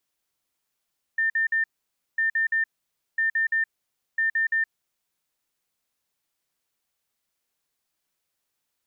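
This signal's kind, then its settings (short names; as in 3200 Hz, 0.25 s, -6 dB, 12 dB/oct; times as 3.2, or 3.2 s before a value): beep pattern sine 1800 Hz, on 0.12 s, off 0.05 s, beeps 3, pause 0.54 s, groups 4, -20 dBFS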